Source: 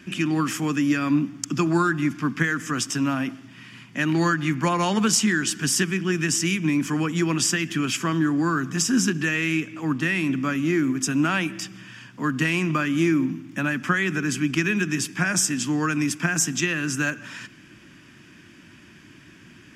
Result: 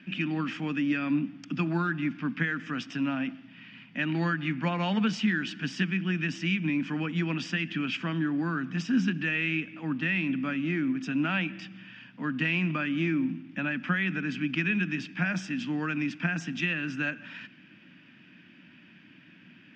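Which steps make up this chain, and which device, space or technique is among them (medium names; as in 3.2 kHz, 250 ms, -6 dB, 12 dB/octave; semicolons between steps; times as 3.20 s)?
kitchen radio (cabinet simulation 170–3800 Hz, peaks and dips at 180 Hz +6 dB, 250 Hz +3 dB, 380 Hz -9 dB, 1.1 kHz -7 dB, 2.6 kHz +4 dB); trim -5.5 dB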